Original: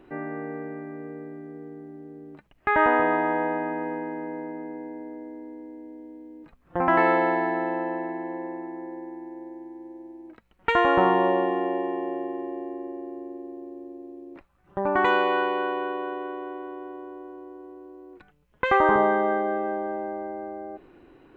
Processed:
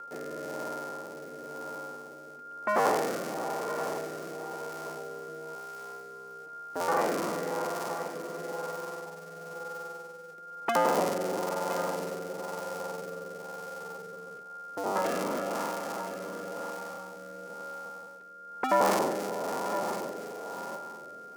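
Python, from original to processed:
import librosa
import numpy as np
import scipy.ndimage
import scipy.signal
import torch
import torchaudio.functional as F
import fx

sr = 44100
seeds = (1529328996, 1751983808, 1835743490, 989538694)

p1 = fx.cycle_switch(x, sr, every=2, mode='inverted')
p2 = scipy.signal.sosfilt(scipy.signal.butter(2, 260.0, 'highpass', fs=sr, output='sos'), p1)
p3 = fx.band_shelf(p2, sr, hz=2400.0, db=-8.0, octaves=1.7)
p4 = fx.notch(p3, sr, hz=1100.0, q=24.0)
p5 = fx.rider(p4, sr, range_db=5, speed_s=2.0)
p6 = p4 + (p5 * librosa.db_to_amplitude(-3.0))
p7 = p6 + 10.0 ** (-29.0 / 20.0) * np.sin(2.0 * np.pi * 1400.0 * np.arange(len(p6)) / sr)
p8 = fx.rotary(p7, sr, hz=1.0)
p9 = p8 + fx.echo_single(p8, sr, ms=1014, db=-12.0, dry=0)
y = p9 * librosa.db_to_amplitude(-8.0)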